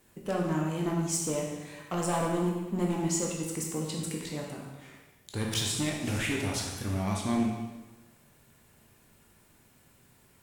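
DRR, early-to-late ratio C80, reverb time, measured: -1.5 dB, 4.5 dB, 1.2 s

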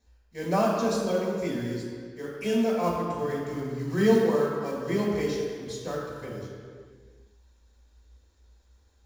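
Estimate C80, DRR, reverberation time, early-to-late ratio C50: 2.0 dB, -5.5 dB, not exponential, 0.5 dB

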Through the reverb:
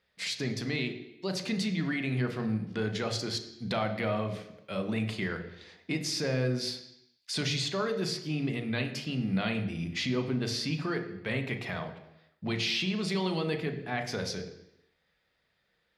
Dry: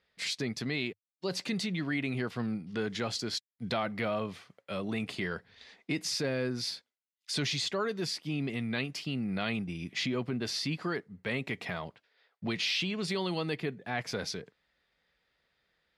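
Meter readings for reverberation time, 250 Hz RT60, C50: 0.85 s, 0.85 s, 9.5 dB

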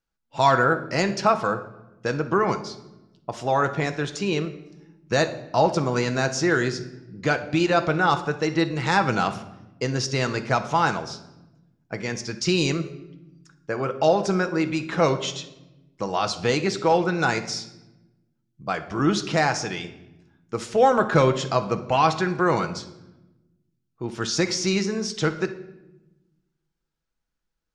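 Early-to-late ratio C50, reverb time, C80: 12.0 dB, 0.95 s, 15.0 dB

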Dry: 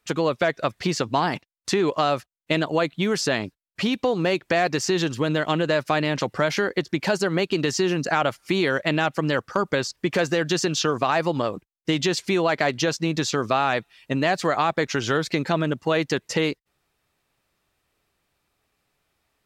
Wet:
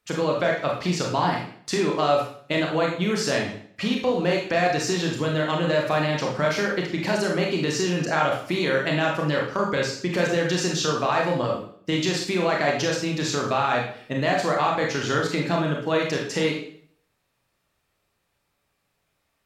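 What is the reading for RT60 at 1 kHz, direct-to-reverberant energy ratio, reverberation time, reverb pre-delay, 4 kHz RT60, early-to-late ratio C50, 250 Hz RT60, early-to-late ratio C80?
0.55 s, -1.5 dB, 0.55 s, 25 ms, 0.55 s, 4.0 dB, 0.60 s, 8.5 dB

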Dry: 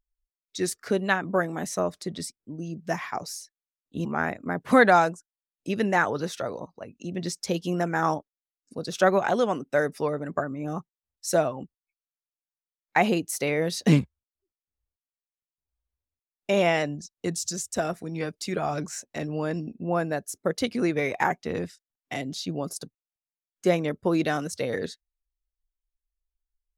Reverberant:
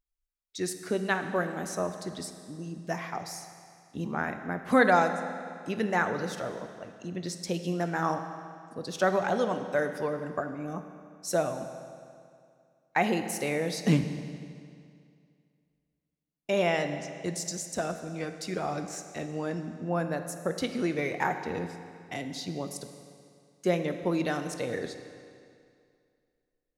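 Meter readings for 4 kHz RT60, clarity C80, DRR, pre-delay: 2.1 s, 9.5 dB, 7.5 dB, 17 ms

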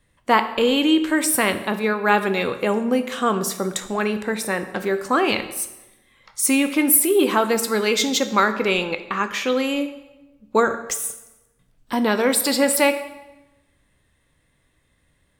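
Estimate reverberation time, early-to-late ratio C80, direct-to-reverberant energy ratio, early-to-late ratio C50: 1.0 s, 13.5 dB, 9.0 dB, 12.0 dB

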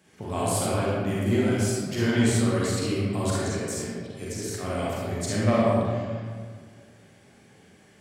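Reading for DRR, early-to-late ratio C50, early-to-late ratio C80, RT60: -7.5 dB, -4.5 dB, -1.0 dB, 1.8 s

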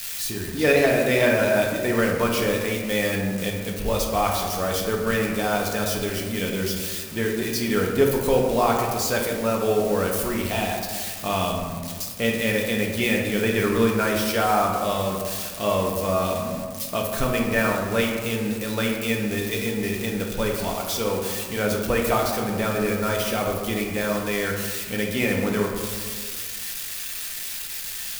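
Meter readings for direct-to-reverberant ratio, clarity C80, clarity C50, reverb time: -1.0 dB, 5.0 dB, 3.0 dB, 1.7 s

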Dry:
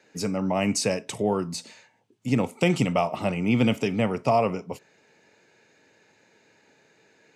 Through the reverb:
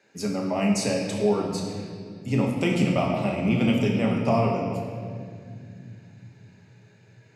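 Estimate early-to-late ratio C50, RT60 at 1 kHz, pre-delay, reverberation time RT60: 3.0 dB, 1.8 s, 5 ms, 2.2 s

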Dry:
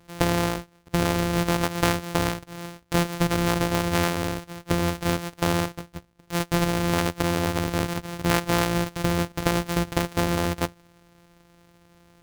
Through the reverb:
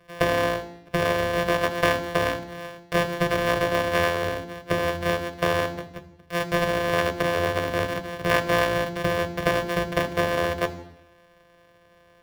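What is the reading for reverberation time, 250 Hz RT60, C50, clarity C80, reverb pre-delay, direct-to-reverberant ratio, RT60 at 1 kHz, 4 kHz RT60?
0.80 s, 0.80 s, 15.5 dB, 17.5 dB, 3 ms, 9.5 dB, 0.80 s, 0.85 s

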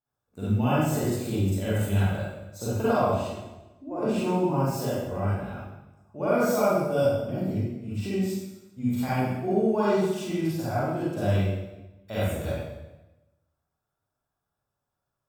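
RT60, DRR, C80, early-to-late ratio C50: 1.0 s, -10.5 dB, 0.0 dB, -5.0 dB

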